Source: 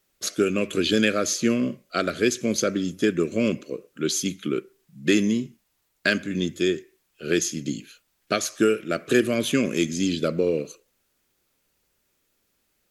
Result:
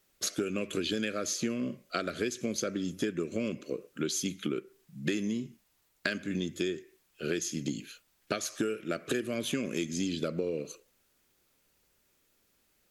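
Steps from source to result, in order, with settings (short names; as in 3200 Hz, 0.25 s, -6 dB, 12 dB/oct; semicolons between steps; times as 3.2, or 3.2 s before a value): compressor, threshold -29 dBFS, peak gain reduction 14.5 dB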